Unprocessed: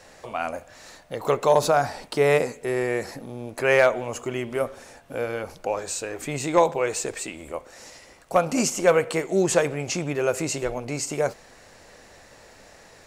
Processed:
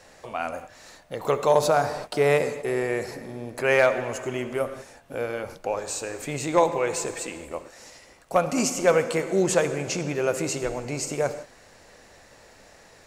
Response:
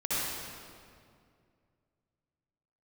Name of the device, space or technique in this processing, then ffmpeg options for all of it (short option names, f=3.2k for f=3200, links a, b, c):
keyed gated reverb: -filter_complex "[0:a]asplit=3[a][b][c];[1:a]atrim=start_sample=2205[d];[b][d]afir=irnorm=-1:irlink=0[e];[c]apad=whole_len=576198[f];[e][f]sidechaingate=range=-33dB:threshold=-40dB:ratio=16:detection=peak,volume=-19dB[g];[a][g]amix=inputs=2:normalize=0,volume=-2dB"